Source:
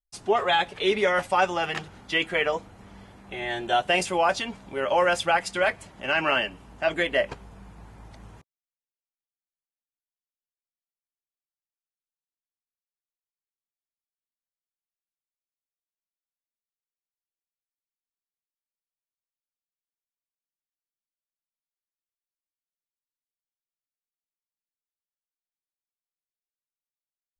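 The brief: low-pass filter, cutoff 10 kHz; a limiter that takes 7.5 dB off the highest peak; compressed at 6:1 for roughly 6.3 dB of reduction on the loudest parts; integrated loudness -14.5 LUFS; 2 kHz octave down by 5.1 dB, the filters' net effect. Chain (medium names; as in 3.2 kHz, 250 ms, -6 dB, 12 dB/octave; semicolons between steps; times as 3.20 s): low-pass 10 kHz; peaking EQ 2 kHz -7 dB; compression 6:1, threshold -25 dBFS; trim +19.5 dB; peak limiter -3.5 dBFS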